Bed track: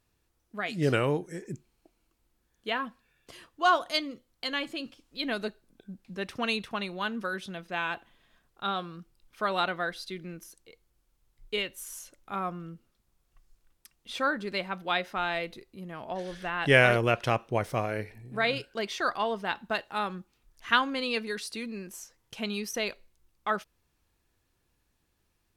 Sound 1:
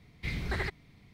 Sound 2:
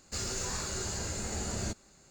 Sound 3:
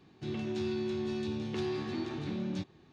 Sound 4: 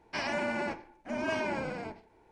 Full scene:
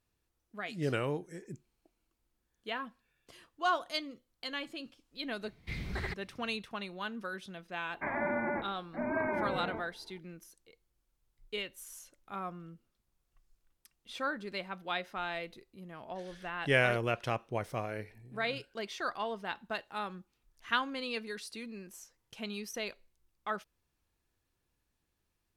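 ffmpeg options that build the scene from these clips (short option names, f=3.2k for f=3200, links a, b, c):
-filter_complex "[0:a]volume=-7dB[a];[4:a]asuperstop=centerf=5400:order=20:qfactor=0.6[b];[1:a]atrim=end=1.13,asetpts=PTS-STARTPTS,volume=-4.5dB,afade=t=in:d=0.004:c=hsin,afade=t=out:st=1.126:d=0.004:c=hsin,adelay=5440[c];[b]atrim=end=2.31,asetpts=PTS-STARTPTS,volume=-0.5dB,afade=t=in:d=0.004:c=hsin,afade=t=out:st=2.306:d=0.004:c=hsin,adelay=7880[d];[a][c][d]amix=inputs=3:normalize=0"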